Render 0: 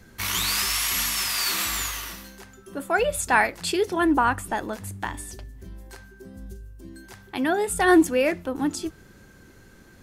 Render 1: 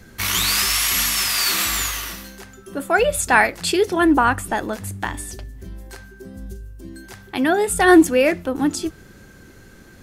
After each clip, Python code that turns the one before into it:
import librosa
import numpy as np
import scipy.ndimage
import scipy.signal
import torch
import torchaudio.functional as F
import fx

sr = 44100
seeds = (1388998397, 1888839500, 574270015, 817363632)

y = fx.peak_eq(x, sr, hz=960.0, db=-3.0, octaves=0.31)
y = F.gain(torch.from_numpy(y), 5.5).numpy()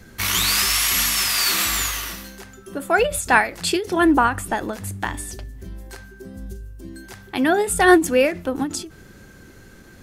y = fx.end_taper(x, sr, db_per_s=160.0)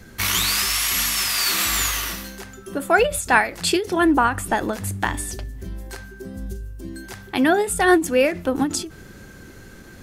y = fx.rider(x, sr, range_db=3, speed_s=0.5)